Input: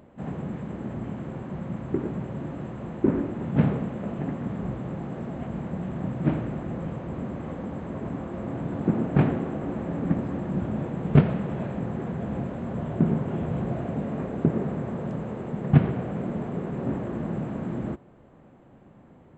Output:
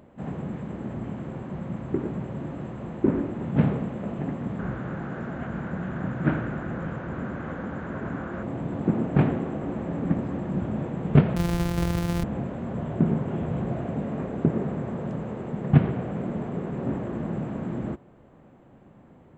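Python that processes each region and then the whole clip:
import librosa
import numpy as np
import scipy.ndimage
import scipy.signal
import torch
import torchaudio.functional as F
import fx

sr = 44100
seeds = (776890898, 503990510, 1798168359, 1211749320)

y = fx.chain(x, sr, fx.peak_eq(hz=1500.0, db=13.0, octaves=0.57),
    fx.resample_bad(factor=3, down='none', up='filtered'), at=(4.59, 8.43))
y = fx.chain(y, sr, fx.sample_sort(block=256),
    fx.low_shelf(hz=170.0, db=12.0), at=(11.36, 12.24))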